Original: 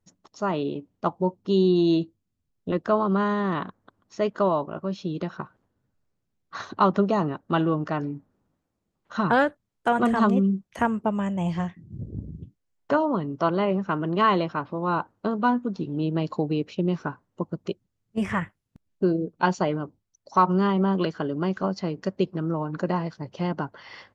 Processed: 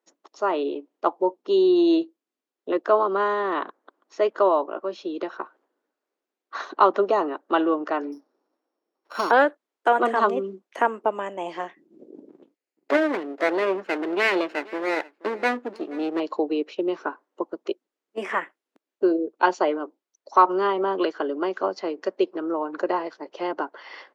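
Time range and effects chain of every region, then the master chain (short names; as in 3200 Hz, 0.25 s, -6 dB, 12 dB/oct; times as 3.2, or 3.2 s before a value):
8.12–9.31 sample sorter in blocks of 8 samples + LPF 3900 Hz 6 dB/oct
12.29–16.2 minimum comb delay 0.42 ms + echo 0.479 s -21.5 dB
whole clip: steep high-pass 310 Hz 36 dB/oct; high shelf 4800 Hz -10 dB; gain +4 dB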